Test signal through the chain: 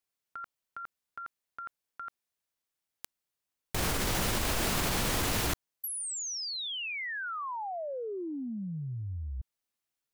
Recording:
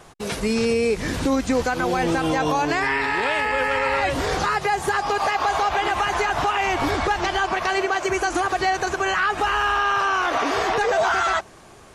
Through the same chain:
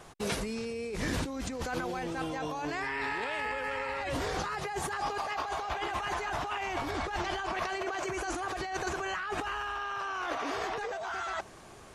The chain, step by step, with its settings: compressor with a negative ratio -26 dBFS, ratio -1; trim -8.5 dB

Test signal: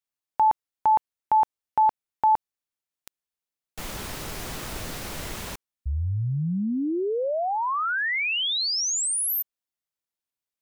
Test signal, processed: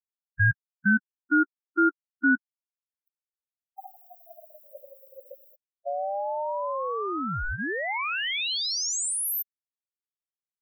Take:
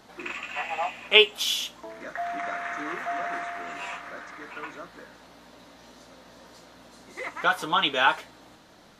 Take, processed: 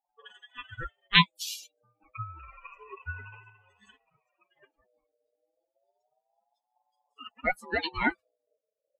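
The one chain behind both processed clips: expander on every frequency bin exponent 3; ring modulator with a swept carrier 670 Hz, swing 20%, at 0.29 Hz; trim +2 dB

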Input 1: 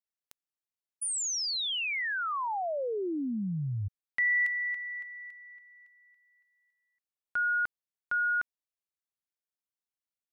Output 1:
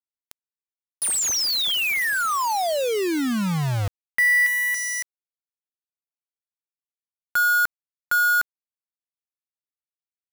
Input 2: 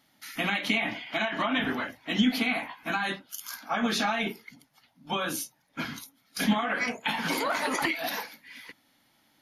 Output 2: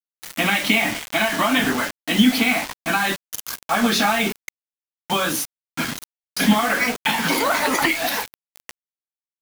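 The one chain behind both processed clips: bit crusher 6-bit; trim +8.5 dB

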